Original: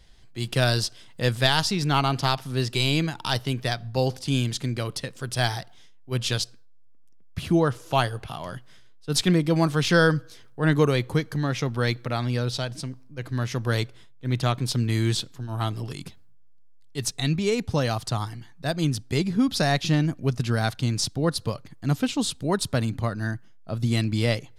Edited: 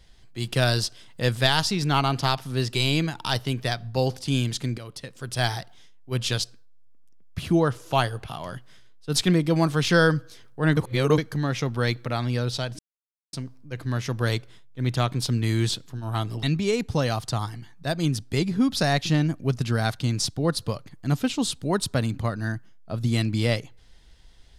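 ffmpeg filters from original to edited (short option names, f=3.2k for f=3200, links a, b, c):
-filter_complex "[0:a]asplit=6[a][b][c][d][e][f];[a]atrim=end=4.78,asetpts=PTS-STARTPTS,afade=t=out:st=4.776:d=0.004:c=hsin:silence=0.237137[g];[b]atrim=start=4.78:end=10.772,asetpts=PTS-STARTPTS,afade=t=in:d=0.69:silence=0.237137[h];[c]atrim=start=10.768:end=11.182,asetpts=PTS-STARTPTS,areverse[i];[d]atrim=start=11.178:end=12.79,asetpts=PTS-STARTPTS,afade=t=out:st=1.608:d=0.004:c=hsin,apad=pad_dur=0.54[j];[e]atrim=start=12.79:end=15.892,asetpts=PTS-STARTPTS,afade=t=in:d=0.004:c=hsin[k];[f]atrim=start=17.218[l];[g][h]concat=n=2:v=0:a=1[m];[m][i]acrossfade=d=0.004:c1=hsin:c2=hsin[n];[j][k]concat=n=2:v=0:a=1[o];[n][o]acrossfade=d=0.004:c1=hsin:c2=hsin[p];[p][l]acrossfade=d=0.004:c1=hsin:c2=hsin"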